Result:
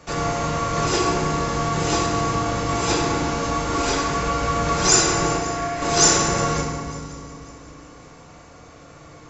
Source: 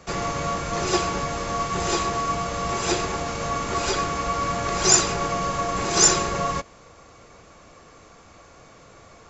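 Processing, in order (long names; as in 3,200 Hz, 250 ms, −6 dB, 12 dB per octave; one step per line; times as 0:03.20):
0:05.36–0:05.82: Chebyshev high-pass with heavy ripple 480 Hz, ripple 9 dB
echo machine with several playback heads 181 ms, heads second and third, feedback 42%, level −20 dB
feedback delay network reverb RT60 2 s, low-frequency decay 1.6×, high-frequency decay 0.55×, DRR −0.5 dB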